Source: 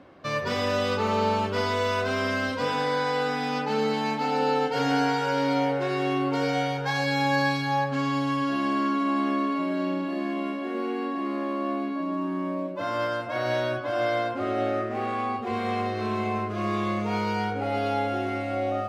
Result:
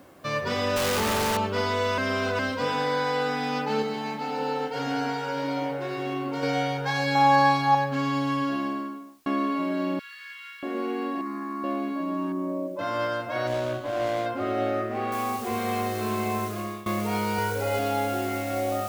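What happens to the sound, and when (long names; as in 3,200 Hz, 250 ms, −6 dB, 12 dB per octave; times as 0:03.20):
0:00.76–0:01.37: sign of each sample alone
0:01.98–0:02.39: reverse
0:03.82–0:06.43: flanger 1 Hz, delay 1 ms, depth 9.9 ms, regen −81%
0:07.15–0:07.75: flat-topped bell 900 Hz +9 dB 1.2 octaves
0:08.36–0:09.26: fade out and dull
0:09.99–0:10.63: Butterworth high-pass 1,300 Hz 72 dB per octave
0:11.21–0:11.64: phaser with its sweep stopped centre 1,300 Hz, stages 4
0:12.32–0:12.79: spectral envelope exaggerated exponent 1.5
0:13.47–0:14.26: running median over 25 samples
0:15.12: noise floor change −65 dB −43 dB
0:16.45–0:16.86: fade out, to −19 dB
0:17.38–0:17.79: comb filter 2 ms, depth 69%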